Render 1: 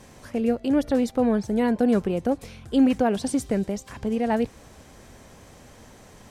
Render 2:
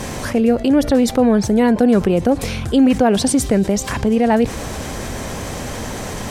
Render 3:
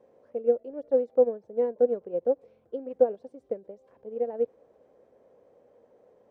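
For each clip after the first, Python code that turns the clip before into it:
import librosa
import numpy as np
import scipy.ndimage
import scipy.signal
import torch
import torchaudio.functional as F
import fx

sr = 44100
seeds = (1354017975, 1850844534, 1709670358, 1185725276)

y1 = fx.env_flatten(x, sr, amount_pct=50)
y1 = y1 * 10.0 ** (5.0 / 20.0)
y2 = fx.bandpass_q(y1, sr, hz=500.0, q=4.7)
y2 = fx.upward_expand(y2, sr, threshold_db=-29.0, expansion=2.5)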